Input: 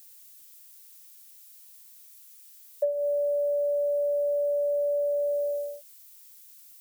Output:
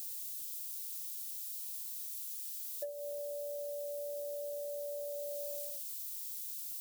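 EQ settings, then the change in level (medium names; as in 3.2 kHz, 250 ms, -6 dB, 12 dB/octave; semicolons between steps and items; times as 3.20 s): FFT filter 360 Hz 0 dB, 530 Hz -25 dB, 3.7 kHz 0 dB; +9.0 dB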